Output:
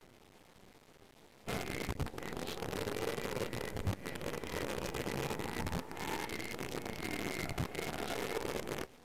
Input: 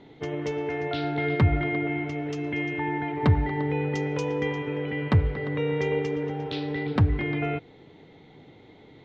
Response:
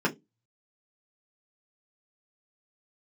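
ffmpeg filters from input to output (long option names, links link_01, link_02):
-filter_complex "[0:a]areverse,acompressor=threshold=-27dB:ratio=12,asplit=2[link_01][link_02];[link_02]lowpass=frequency=1400:width_type=q:width=2.7[link_03];[1:a]atrim=start_sample=2205[link_04];[link_03][link_04]afir=irnorm=-1:irlink=0,volume=-32dB[link_05];[link_01][link_05]amix=inputs=2:normalize=0,afftfilt=real='hypot(re,im)*cos(2*PI*random(0))':imag='hypot(re,im)*sin(2*PI*random(1))':win_size=512:overlap=0.75,flanger=delay=7.6:depth=8:regen=59:speed=0.3:shape=triangular,acrusher=bits=7:dc=4:mix=0:aa=0.000001,volume=2.5dB" -ar 32000 -c:a libvorbis -b:a 128k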